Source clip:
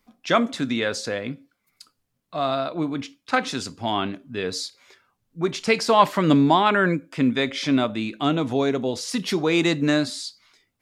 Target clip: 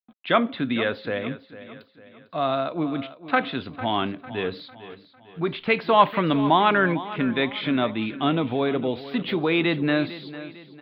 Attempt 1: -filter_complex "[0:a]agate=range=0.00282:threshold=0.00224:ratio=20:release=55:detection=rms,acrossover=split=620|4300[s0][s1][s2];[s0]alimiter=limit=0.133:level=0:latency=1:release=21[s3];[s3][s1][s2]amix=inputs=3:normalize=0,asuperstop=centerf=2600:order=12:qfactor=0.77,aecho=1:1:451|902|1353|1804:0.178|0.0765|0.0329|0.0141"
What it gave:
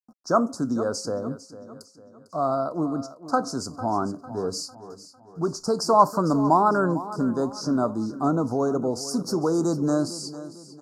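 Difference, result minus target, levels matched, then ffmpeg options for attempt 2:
2 kHz band -12.5 dB
-filter_complex "[0:a]agate=range=0.00282:threshold=0.00224:ratio=20:release=55:detection=rms,acrossover=split=620|4300[s0][s1][s2];[s0]alimiter=limit=0.133:level=0:latency=1:release=21[s3];[s3][s1][s2]amix=inputs=3:normalize=0,asuperstop=centerf=8400:order=12:qfactor=0.77,aecho=1:1:451|902|1353|1804:0.178|0.0765|0.0329|0.0141"

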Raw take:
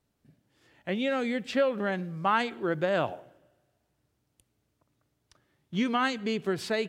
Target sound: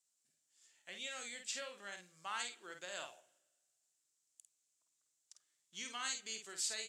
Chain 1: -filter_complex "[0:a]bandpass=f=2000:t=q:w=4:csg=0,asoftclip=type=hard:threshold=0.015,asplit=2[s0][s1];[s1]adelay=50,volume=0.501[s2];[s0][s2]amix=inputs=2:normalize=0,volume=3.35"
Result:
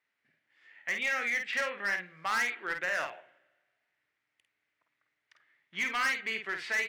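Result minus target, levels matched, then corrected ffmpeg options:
8 kHz band -15.5 dB
-filter_complex "[0:a]bandpass=f=7400:t=q:w=4:csg=0,asoftclip=type=hard:threshold=0.015,asplit=2[s0][s1];[s1]adelay=50,volume=0.501[s2];[s0][s2]amix=inputs=2:normalize=0,volume=3.35"

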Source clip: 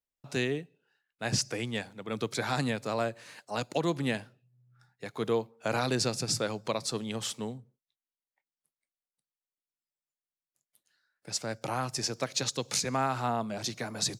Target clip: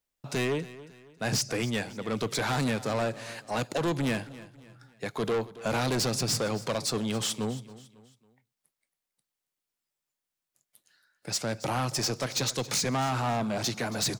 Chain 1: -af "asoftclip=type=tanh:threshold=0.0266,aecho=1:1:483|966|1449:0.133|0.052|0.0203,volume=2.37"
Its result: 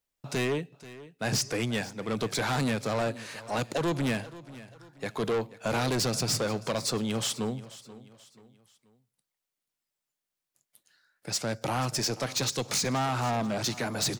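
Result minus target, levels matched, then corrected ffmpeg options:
echo 208 ms late
-af "asoftclip=type=tanh:threshold=0.0266,aecho=1:1:275|550|825:0.133|0.052|0.0203,volume=2.37"

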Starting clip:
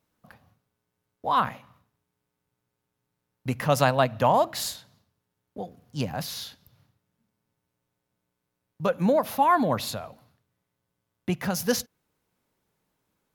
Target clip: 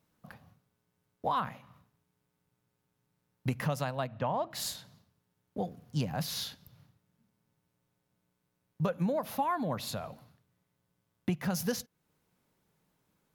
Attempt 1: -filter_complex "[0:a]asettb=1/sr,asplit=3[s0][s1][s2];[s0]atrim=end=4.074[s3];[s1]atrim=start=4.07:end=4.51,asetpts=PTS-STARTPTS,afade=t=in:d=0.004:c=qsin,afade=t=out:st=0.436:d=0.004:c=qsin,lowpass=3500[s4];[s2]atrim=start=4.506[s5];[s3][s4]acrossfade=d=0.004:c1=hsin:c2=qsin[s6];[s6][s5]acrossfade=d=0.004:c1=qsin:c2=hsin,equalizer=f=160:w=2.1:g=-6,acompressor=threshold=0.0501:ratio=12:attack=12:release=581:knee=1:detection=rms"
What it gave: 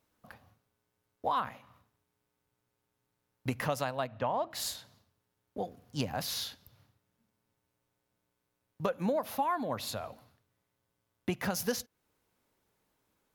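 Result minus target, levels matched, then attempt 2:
125 Hz band -5.0 dB
-filter_complex "[0:a]asettb=1/sr,asplit=3[s0][s1][s2];[s0]atrim=end=4.074[s3];[s1]atrim=start=4.07:end=4.51,asetpts=PTS-STARTPTS,afade=t=in:d=0.004:c=qsin,afade=t=out:st=0.436:d=0.004:c=qsin,lowpass=3500[s4];[s2]atrim=start=4.506[s5];[s3][s4]acrossfade=d=0.004:c1=hsin:c2=qsin[s6];[s6][s5]acrossfade=d=0.004:c1=qsin:c2=hsin,equalizer=f=160:w=2.1:g=5.5,acompressor=threshold=0.0501:ratio=12:attack=12:release=581:knee=1:detection=rms"

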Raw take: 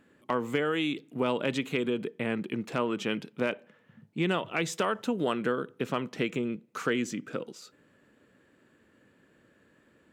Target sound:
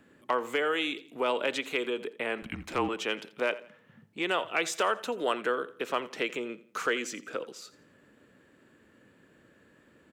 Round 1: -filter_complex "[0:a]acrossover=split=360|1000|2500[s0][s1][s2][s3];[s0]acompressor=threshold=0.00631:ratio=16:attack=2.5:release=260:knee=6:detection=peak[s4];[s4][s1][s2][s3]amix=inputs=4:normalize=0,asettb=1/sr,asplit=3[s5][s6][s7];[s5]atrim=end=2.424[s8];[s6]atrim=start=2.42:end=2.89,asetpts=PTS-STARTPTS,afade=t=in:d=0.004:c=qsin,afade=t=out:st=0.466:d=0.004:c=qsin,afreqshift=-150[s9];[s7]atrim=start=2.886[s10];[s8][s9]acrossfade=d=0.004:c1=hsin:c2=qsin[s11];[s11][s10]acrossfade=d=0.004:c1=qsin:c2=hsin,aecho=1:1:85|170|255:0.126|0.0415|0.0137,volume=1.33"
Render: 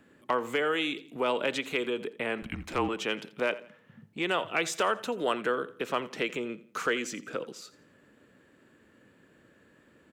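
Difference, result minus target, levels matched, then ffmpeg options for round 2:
compression: peak gain reduction -9.5 dB
-filter_complex "[0:a]acrossover=split=360|1000|2500[s0][s1][s2][s3];[s0]acompressor=threshold=0.002:ratio=16:attack=2.5:release=260:knee=6:detection=peak[s4];[s4][s1][s2][s3]amix=inputs=4:normalize=0,asettb=1/sr,asplit=3[s5][s6][s7];[s5]atrim=end=2.424[s8];[s6]atrim=start=2.42:end=2.89,asetpts=PTS-STARTPTS,afade=t=in:d=0.004:c=qsin,afade=t=out:st=0.466:d=0.004:c=qsin,afreqshift=-150[s9];[s7]atrim=start=2.886[s10];[s8][s9]acrossfade=d=0.004:c1=hsin:c2=qsin[s11];[s11][s10]acrossfade=d=0.004:c1=qsin:c2=hsin,aecho=1:1:85|170|255:0.126|0.0415|0.0137,volume=1.33"

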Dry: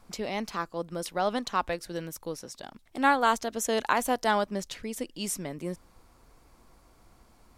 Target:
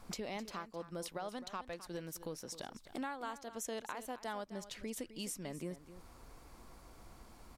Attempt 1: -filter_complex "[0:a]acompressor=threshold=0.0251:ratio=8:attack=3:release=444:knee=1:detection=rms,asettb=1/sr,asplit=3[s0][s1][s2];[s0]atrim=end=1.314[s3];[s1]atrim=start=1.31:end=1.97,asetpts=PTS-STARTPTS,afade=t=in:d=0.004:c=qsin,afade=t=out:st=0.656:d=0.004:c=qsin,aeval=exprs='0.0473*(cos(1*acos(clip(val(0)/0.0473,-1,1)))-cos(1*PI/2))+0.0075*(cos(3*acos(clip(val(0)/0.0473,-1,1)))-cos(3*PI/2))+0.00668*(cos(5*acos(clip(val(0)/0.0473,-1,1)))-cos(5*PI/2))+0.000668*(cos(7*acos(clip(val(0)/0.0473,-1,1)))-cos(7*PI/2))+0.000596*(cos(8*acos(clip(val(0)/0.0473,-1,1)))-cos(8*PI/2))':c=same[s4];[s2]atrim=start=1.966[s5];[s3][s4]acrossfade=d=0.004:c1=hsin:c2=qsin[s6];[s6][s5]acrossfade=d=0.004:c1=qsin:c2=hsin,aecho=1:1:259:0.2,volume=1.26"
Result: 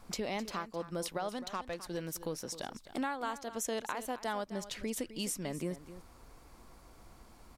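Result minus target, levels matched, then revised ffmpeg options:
compression: peak gain reduction -5.5 dB
-filter_complex "[0:a]acompressor=threshold=0.0119:ratio=8:attack=3:release=444:knee=1:detection=rms,asettb=1/sr,asplit=3[s0][s1][s2];[s0]atrim=end=1.314[s3];[s1]atrim=start=1.31:end=1.97,asetpts=PTS-STARTPTS,afade=t=in:d=0.004:c=qsin,afade=t=out:st=0.656:d=0.004:c=qsin,aeval=exprs='0.0473*(cos(1*acos(clip(val(0)/0.0473,-1,1)))-cos(1*PI/2))+0.0075*(cos(3*acos(clip(val(0)/0.0473,-1,1)))-cos(3*PI/2))+0.00668*(cos(5*acos(clip(val(0)/0.0473,-1,1)))-cos(5*PI/2))+0.000668*(cos(7*acos(clip(val(0)/0.0473,-1,1)))-cos(7*PI/2))+0.000596*(cos(8*acos(clip(val(0)/0.0473,-1,1)))-cos(8*PI/2))':c=same[s4];[s2]atrim=start=1.966[s5];[s3][s4]acrossfade=d=0.004:c1=hsin:c2=qsin[s6];[s6][s5]acrossfade=d=0.004:c1=qsin:c2=hsin,aecho=1:1:259:0.2,volume=1.26"

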